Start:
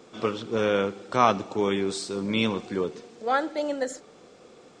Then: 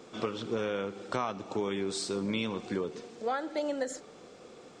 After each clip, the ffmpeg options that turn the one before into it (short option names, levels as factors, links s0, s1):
-af "acompressor=threshold=0.0398:ratio=10"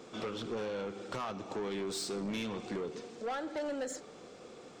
-af "asoftclip=type=tanh:threshold=0.0251"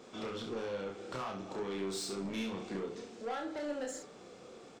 -af "aecho=1:1:31|68:0.631|0.422,volume=0.668"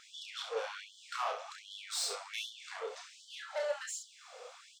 -af "afftfilt=real='re*gte(b*sr/1024,420*pow(3000/420,0.5+0.5*sin(2*PI*1.3*pts/sr)))':imag='im*gte(b*sr/1024,420*pow(3000/420,0.5+0.5*sin(2*PI*1.3*pts/sr)))':win_size=1024:overlap=0.75,volume=1.88"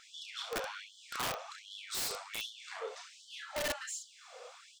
-af "flanger=delay=1.3:depth=4.3:regen=68:speed=1.3:shape=triangular,aeval=exprs='(mod(50.1*val(0)+1,2)-1)/50.1':c=same,volume=1.68"